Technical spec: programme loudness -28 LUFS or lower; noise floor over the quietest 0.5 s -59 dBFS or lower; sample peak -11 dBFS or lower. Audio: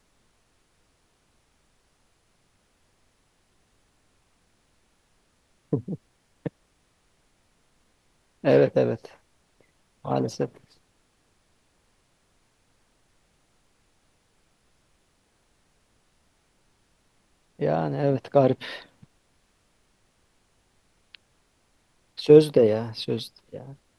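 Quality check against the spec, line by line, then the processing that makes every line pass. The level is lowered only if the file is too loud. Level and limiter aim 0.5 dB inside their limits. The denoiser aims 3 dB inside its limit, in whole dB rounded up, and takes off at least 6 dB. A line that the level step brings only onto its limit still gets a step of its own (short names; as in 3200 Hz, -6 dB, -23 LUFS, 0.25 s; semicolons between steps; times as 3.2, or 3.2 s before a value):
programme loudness -23.5 LUFS: fail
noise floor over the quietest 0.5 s -67 dBFS: OK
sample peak -3.0 dBFS: fail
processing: gain -5 dB; limiter -11.5 dBFS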